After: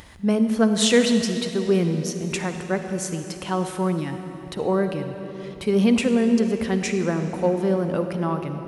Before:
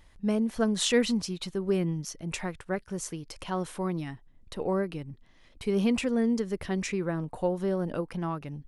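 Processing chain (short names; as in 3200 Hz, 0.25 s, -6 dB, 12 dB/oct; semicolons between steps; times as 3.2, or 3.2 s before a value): HPF 71 Hz; upward compressor, threshold -44 dBFS; on a send: reverb RT60 3.8 s, pre-delay 46 ms, DRR 7 dB; on the sum: gain +6.5 dB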